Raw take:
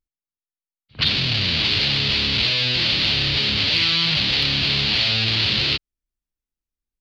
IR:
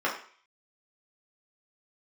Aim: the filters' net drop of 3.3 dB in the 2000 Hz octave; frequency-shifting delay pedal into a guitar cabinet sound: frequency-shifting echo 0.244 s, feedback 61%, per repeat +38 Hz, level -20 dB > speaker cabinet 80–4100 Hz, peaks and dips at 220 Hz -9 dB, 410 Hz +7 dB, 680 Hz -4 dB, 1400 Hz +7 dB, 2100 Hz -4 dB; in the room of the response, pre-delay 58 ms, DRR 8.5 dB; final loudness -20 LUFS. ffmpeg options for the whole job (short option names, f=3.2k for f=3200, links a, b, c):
-filter_complex "[0:a]equalizer=f=2k:t=o:g=-3.5,asplit=2[a][b];[1:a]atrim=start_sample=2205,adelay=58[c];[b][c]afir=irnorm=-1:irlink=0,volume=-20.5dB[d];[a][d]amix=inputs=2:normalize=0,asplit=6[e][f][g][h][i][j];[f]adelay=244,afreqshift=38,volume=-20dB[k];[g]adelay=488,afreqshift=76,volume=-24.3dB[l];[h]adelay=732,afreqshift=114,volume=-28.6dB[m];[i]adelay=976,afreqshift=152,volume=-32.9dB[n];[j]adelay=1220,afreqshift=190,volume=-37.2dB[o];[e][k][l][m][n][o]amix=inputs=6:normalize=0,highpass=80,equalizer=f=220:t=q:w=4:g=-9,equalizer=f=410:t=q:w=4:g=7,equalizer=f=680:t=q:w=4:g=-4,equalizer=f=1.4k:t=q:w=4:g=7,equalizer=f=2.1k:t=q:w=4:g=-4,lowpass=f=4.1k:w=0.5412,lowpass=f=4.1k:w=1.3066,volume=0.5dB"